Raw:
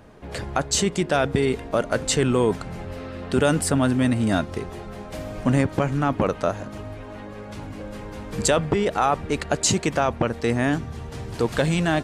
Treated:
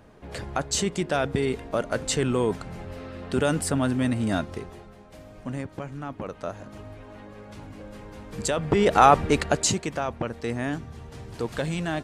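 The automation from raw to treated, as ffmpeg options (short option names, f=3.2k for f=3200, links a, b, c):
-af "volume=15dB,afade=t=out:st=4.47:d=0.49:silence=0.354813,afade=t=in:st=6.24:d=0.54:silence=0.473151,afade=t=in:st=8.57:d=0.49:silence=0.237137,afade=t=out:st=9.06:d=0.75:silence=0.223872"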